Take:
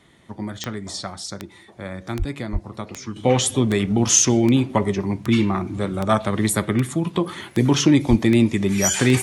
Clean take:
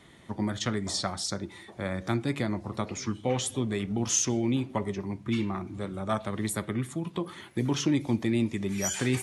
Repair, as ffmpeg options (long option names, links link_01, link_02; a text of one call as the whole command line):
ffmpeg -i in.wav -filter_complex "[0:a]adeclick=threshold=4,asplit=3[link_01][link_02][link_03];[link_01]afade=type=out:start_time=2.18:duration=0.02[link_04];[link_02]highpass=frequency=140:width=0.5412,highpass=frequency=140:width=1.3066,afade=type=in:start_time=2.18:duration=0.02,afade=type=out:start_time=2.3:duration=0.02[link_05];[link_03]afade=type=in:start_time=2.3:duration=0.02[link_06];[link_04][link_05][link_06]amix=inputs=3:normalize=0,asplit=3[link_07][link_08][link_09];[link_07]afade=type=out:start_time=2.52:duration=0.02[link_10];[link_08]highpass=frequency=140:width=0.5412,highpass=frequency=140:width=1.3066,afade=type=in:start_time=2.52:duration=0.02,afade=type=out:start_time=2.64:duration=0.02[link_11];[link_09]afade=type=in:start_time=2.64:duration=0.02[link_12];[link_10][link_11][link_12]amix=inputs=3:normalize=0,asplit=3[link_13][link_14][link_15];[link_13]afade=type=out:start_time=8.09:duration=0.02[link_16];[link_14]highpass=frequency=140:width=0.5412,highpass=frequency=140:width=1.3066,afade=type=in:start_time=8.09:duration=0.02,afade=type=out:start_time=8.21:duration=0.02[link_17];[link_15]afade=type=in:start_time=8.21:duration=0.02[link_18];[link_16][link_17][link_18]amix=inputs=3:normalize=0,asetnsamples=nb_out_samples=441:pad=0,asendcmd='3.16 volume volume -10.5dB',volume=0dB" out.wav